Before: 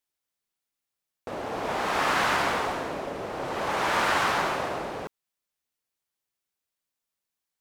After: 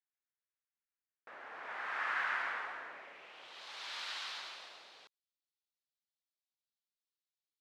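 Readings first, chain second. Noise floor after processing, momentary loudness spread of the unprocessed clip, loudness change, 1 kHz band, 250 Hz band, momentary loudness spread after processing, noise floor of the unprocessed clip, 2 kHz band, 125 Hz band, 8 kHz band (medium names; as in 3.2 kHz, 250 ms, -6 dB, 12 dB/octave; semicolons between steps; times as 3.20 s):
under -85 dBFS, 13 LU, -12.5 dB, -16.5 dB, -31.0 dB, 18 LU, under -85 dBFS, -10.0 dB, under -35 dB, -18.0 dB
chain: band-pass sweep 1.7 kHz -> 4 kHz, 2.90–3.63 s; trim -6 dB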